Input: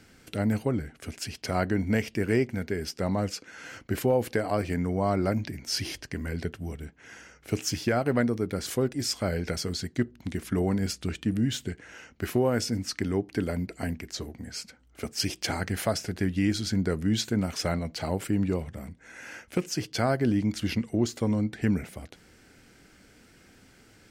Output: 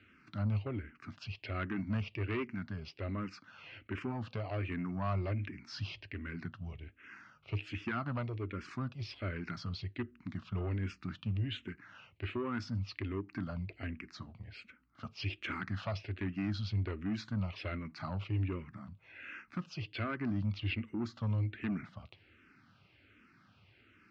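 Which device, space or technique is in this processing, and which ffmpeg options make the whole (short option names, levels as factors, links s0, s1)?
barber-pole phaser into a guitar amplifier: -filter_complex "[0:a]asplit=2[s0][s1];[s1]afreqshift=-1.3[s2];[s0][s2]amix=inputs=2:normalize=1,asoftclip=type=tanh:threshold=0.0708,highpass=78,equalizer=f=100:t=q:w=4:g=10,equalizer=f=470:t=q:w=4:g=-9,equalizer=f=760:t=q:w=4:g=-5,equalizer=f=1200:t=q:w=4:g=9,equalizer=f=2600:t=q:w=4:g=8,lowpass=f=4000:w=0.5412,lowpass=f=4000:w=1.3066,volume=0.501"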